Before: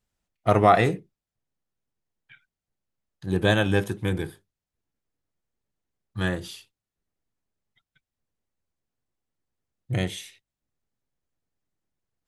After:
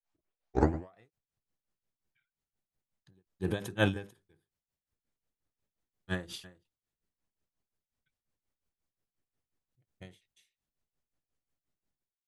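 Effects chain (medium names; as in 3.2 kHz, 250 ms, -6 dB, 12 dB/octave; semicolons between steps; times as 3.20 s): tape start-up on the opening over 0.74 s; granulator 221 ms, grains 5.6 per s, spray 249 ms; endings held to a fixed fall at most 170 dB/s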